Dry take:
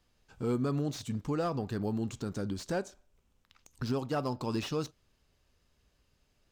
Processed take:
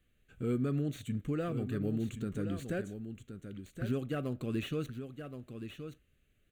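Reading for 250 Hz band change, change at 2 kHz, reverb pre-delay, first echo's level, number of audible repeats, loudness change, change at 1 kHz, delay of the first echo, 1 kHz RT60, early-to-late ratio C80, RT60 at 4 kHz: −0.5 dB, −1.0 dB, no reverb audible, −9.0 dB, 1, −2.5 dB, −9.5 dB, 1,073 ms, no reverb audible, no reverb audible, no reverb audible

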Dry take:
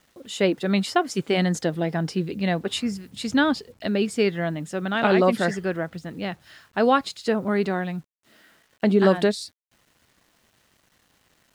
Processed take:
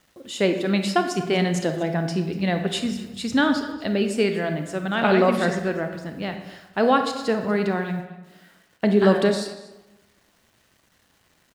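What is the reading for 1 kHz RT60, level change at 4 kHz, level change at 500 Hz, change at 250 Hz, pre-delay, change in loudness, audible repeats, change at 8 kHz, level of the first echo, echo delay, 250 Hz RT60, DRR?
1.1 s, +0.5 dB, +1.0 dB, +1.0 dB, 27 ms, +1.0 dB, 1, +0.5 dB, −19.0 dB, 241 ms, 1.1 s, 6.0 dB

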